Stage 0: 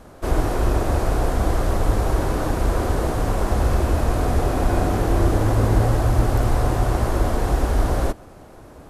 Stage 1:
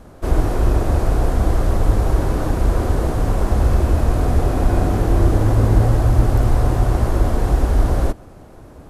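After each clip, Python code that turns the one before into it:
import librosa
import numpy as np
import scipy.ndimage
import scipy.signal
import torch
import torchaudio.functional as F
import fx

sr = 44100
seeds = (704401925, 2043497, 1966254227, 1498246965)

y = fx.low_shelf(x, sr, hz=330.0, db=6.0)
y = y * 10.0 ** (-1.5 / 20.0)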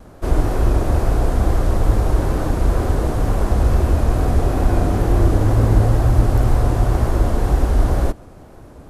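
y = fx.wow_flutter(x, sr, seeds[0], rate_hz=2.1, depth_cents=47.0)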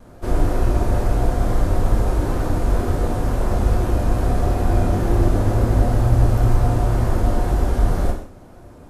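y = fx.rev_gated(x, sr, seeds[1], gate_ms=210, shape='falling', drr_db=0.5)
y = y * 10.0 ** (-4.5 / 20.0)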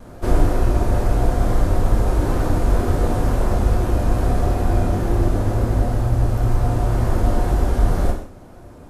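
y = fx.rider(x, sr, range_db=10, speed_s=0.5)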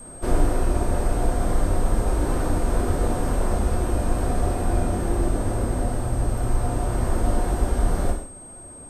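y = fx.peak_eq(x, sr, hz=120.0, db=-6.0, octaves=0.45)
y = fx.hum_notches(y, sr, base_hz=50, count=2)
y = y + 10.0 ** (-38.0 / 20.0) * np.sin(2.0 * np.pi * 8400.0 * np.arange(len(y)) / sr)
y = y * 10.0 ** (-3.0 / 20.0)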